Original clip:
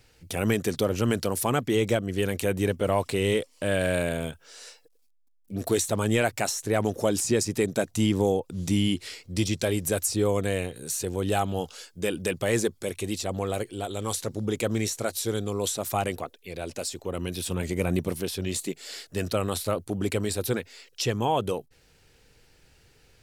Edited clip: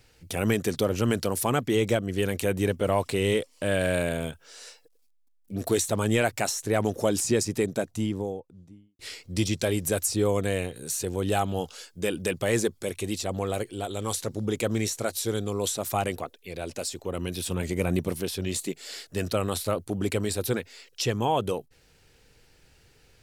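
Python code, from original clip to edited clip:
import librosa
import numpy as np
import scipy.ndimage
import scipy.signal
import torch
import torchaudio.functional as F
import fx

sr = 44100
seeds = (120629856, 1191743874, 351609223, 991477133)

y = fx.studio_fade_out(x, sr, start_s=7.3, length_s=1.69)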